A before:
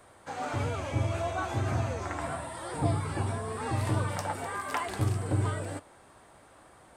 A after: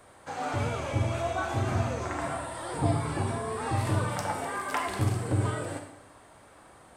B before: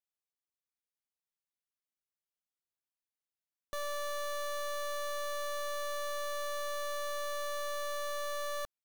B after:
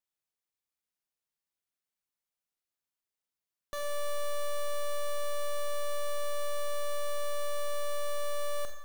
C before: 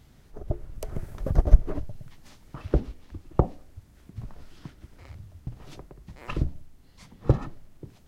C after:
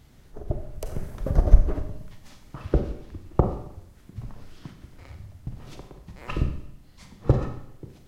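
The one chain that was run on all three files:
Schroeder reverb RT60 0.76 s, combs from 30 ms, DRR 5.5 dB; trim +1 dB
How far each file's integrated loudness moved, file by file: +1.5 LU, +1.5 LU, +1.5 LU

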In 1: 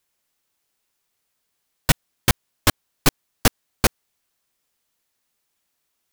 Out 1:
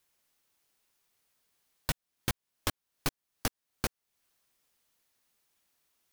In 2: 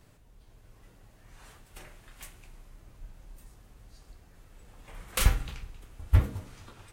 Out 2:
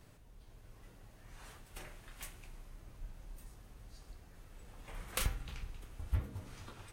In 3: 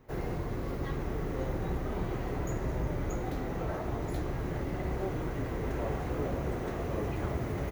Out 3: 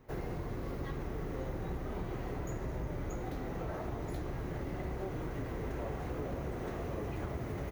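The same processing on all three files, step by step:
band-stop 7.4 kHz, Q 26; compression 2.5:1, threshold -35 dBFS; trim -1 dB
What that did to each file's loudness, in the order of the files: -14.5 LU, -16.0 LU, -5.0 LU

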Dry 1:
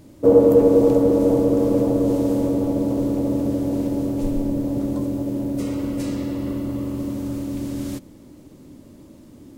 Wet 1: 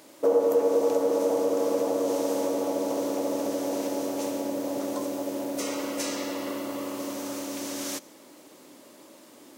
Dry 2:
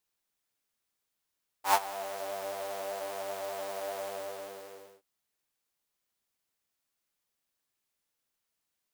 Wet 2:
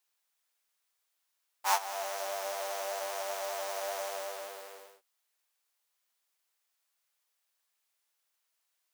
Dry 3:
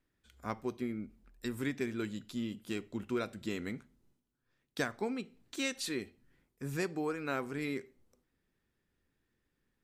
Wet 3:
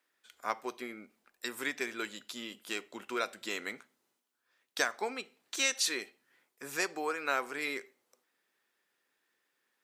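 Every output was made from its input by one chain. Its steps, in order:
dynamic bell 6 kHz, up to +6 dB, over -59 dBFS, Q 3.3; high-pass 650 Hz 12 dB/octave; compression 2:1, threshold -31 dBFS; peak normalisation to -12 dBFS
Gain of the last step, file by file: +6.0 dB, +3.5 dB, +7.0 dB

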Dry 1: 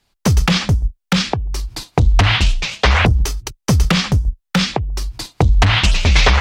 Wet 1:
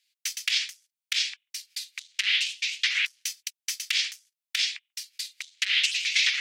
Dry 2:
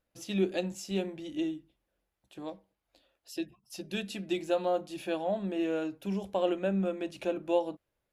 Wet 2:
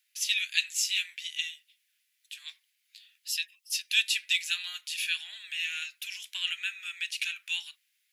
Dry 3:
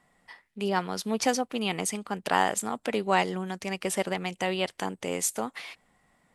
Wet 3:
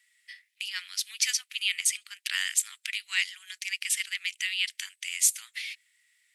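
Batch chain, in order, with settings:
steep high-pass 2 kHz 36 dB/octave; peak normalisation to -9 dBFS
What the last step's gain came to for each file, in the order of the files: -4.5 dB, +15.5 dB, +6.0 dB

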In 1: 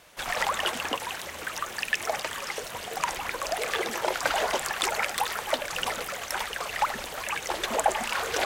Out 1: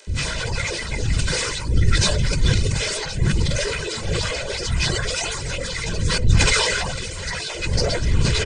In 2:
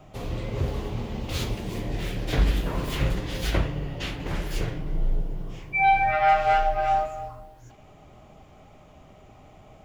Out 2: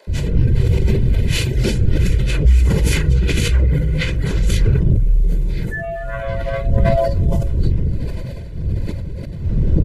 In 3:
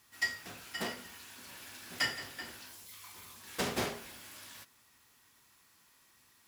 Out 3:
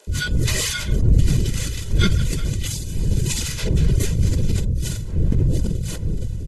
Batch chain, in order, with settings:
frequency axis rescaled in octaves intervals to 87%; wind noise 160 Hz -31 dBFS; feedback delay 64 ms, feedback 40%, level -14.5 dB; compression 3:1, threshold -28 dBFS; reverb removal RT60 0.56 s; peaking EQ 1 kHz -14.5 dB 1.8 oct; comb 2 ms, depth 53%; bands offset in time highs, lows 70 ms, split 640 Hz; decay stretcher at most 23 dB/s; peak normalisation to -3 dBFS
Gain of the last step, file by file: +11.5 dB, +14.5 dB, +12.5 dB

